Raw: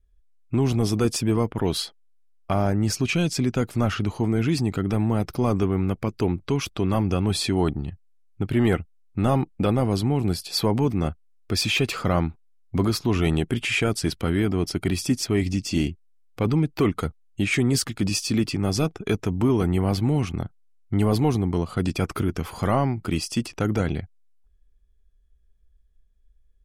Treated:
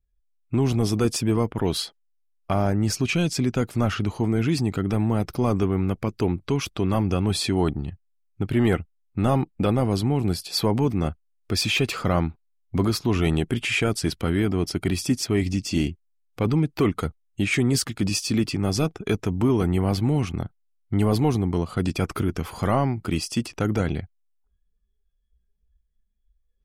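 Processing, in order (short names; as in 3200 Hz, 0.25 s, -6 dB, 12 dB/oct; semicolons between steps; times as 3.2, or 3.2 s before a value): spectral noise reduction 11 dB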